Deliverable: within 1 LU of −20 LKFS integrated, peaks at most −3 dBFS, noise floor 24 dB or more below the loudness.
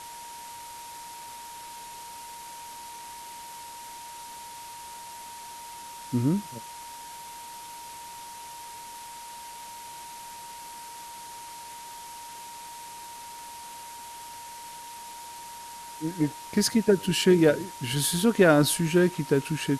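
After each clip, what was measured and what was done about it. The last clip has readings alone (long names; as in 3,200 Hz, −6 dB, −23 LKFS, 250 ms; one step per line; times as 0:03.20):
interfering tone 940 Hz; level of the tone −41 dBFS; background noise floor −42 dBFS; target noise floor −48 dBFS; integrated loudness −24.0 LKFS; sample peak −7.0 dBFS; target loudness −20.0 LKFS
→ notch filter 940 Hz, Q 30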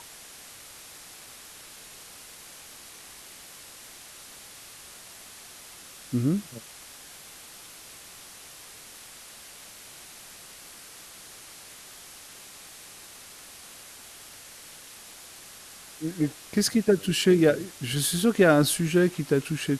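interfering tone none found; background noise floor −47 dBFS; target noise floor −48 dBFS
→ broadband denoise 6 dB, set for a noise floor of −47 dBFS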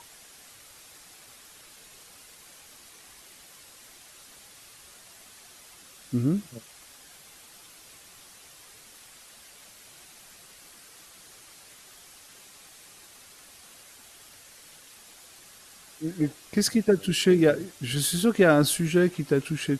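background noise floor −51 dBFS; integrated loudness −24.0 LKFS; sample peak −7.5 dBFS; target loudness −20.0 LKFS
→ level +4 dB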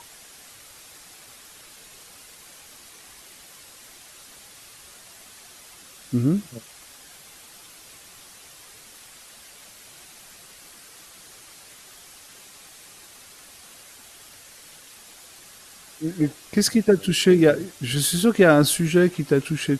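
integrated loudness −20.0 LKFS; sample peak −3.5 dBFS; background noise floor −47 dBFS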